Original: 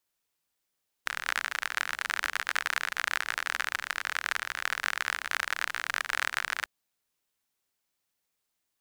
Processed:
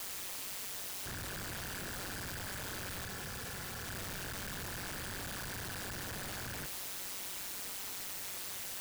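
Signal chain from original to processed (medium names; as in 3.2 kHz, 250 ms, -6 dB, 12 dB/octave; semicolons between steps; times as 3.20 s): one-bit comparator; ring modulator 96 Hz; 3.05–3.88 s: comb of notches 310 Hz; trim -4 dB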